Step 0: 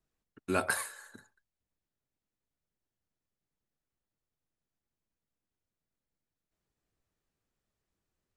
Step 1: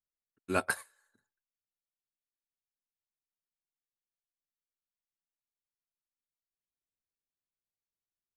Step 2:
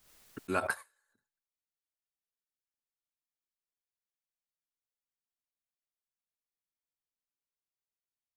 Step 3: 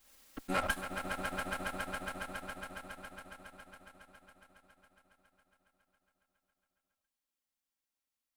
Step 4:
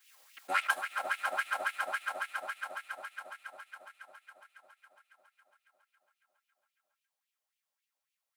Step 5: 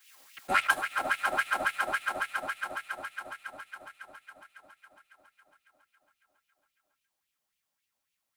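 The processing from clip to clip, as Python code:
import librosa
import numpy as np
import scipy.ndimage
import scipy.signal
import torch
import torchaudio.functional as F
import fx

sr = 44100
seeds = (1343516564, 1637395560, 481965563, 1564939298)

y1 = fx.upward_expand(x, sr, threshold_db=-42.0, expansion=2.5)
y1 = F.gain(torch.from_numpy(y1), 2.0).numpy()
y2 = fx.dynamic_eq(y1, sr, hz=1100.0, q=0.77, threshold_db=-43.0, ratio=4.0, max_db=6)
y2 = fx.pre_swell(y2, sr, db_per_s=72.0)
y2 = F.gain(torch.from_numpy(y2), -6.0).numpy()
y3 = fx.lower_of_two(y2, sr, delay_ms=3.7)
y3 = fx.echo_swell(y3, sr, ms=138, loudest=5, wet_db=-8)
y3 = F.gain(torch.from_numpy(y3), 1.0).numpy()
y4 = fx.filter_lfo_highpass(y3, sr, shape='sine', hz=3.6, low_hz=580.0, high_hz=2700.0, q=3.2)
y5 = fx.octave_divider(y4, sr, octaves=1, level_db=3.0)
y5 = F.gain(torch.from_numpy(y5), 4.5).numpy()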